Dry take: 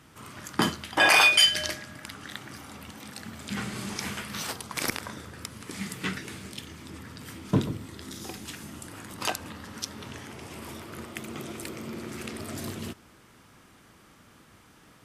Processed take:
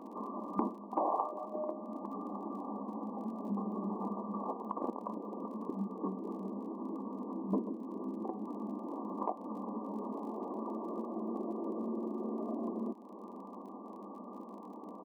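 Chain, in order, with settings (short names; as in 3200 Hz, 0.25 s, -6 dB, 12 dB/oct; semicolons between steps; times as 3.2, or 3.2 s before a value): FFT band-pass 190–1200 Hz; compressor 2.5:1, threshold -53 dBFS, peak gain reduction 21 dB; crackle 33/s -64 dBFS; echo 0.395 s -22.5 dB; gain +12.5 dB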